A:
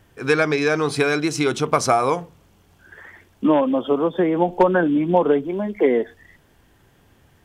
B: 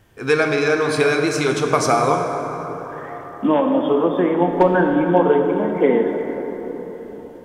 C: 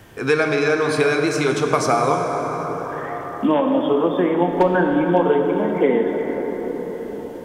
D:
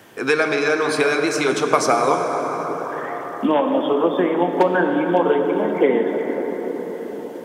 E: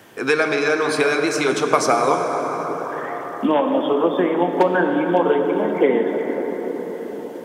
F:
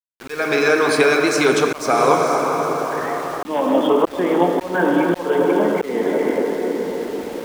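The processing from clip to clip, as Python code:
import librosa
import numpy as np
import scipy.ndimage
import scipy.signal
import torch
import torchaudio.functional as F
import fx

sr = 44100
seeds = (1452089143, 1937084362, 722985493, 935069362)

y1 = fx.rev_plate(x, sr, seeds[0], rt60_s=4.7, hf_ratio=0.4, predelay_ms=0, drr_db=2.5)
y2 = fx.band_squash(y1, sr, depth_pct=40)
y2 = y2 * 10.0 ** (-1.0 / 20.0)
y3 = scipy.signal.sosfilt(scipy.signal.butter(2, 210.0, 'highpass', fs=sr, output='sos'), y2)
y3 = fx.hpss(y3, sr, part='percussive', gain_db=5)
y3 = y3 * 10.0 ** (-1.5 / 20.0)
y4 = y3
y5 = fx.echo_diffused(y4, sr, ms=465, feedback_pct=42, wet_db=-11)
y5 = fx.auto_swell(y5, sr, attack_ms=280.0)
y5 = np.where(np.abs(y5) >= 10.0 ** (-35.5 / 20.0), y5, 0.0)
y5 = y5 * 10.0 ** (3.0 / 20.0)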